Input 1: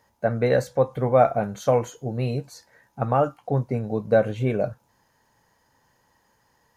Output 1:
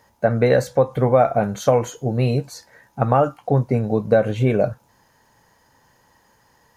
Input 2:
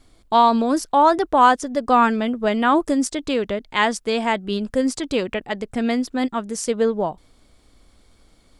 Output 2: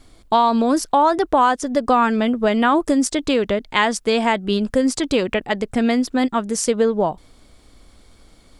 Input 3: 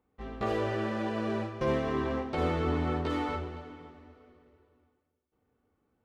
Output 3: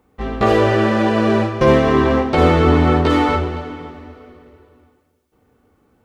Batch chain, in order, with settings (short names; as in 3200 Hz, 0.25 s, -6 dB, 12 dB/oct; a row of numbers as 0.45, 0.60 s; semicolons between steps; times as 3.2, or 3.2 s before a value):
compressor 3:1, threshold -19 dBFS; normalise peaks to -3 dBFS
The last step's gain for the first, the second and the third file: +7.0, +5.5, +16.5 dB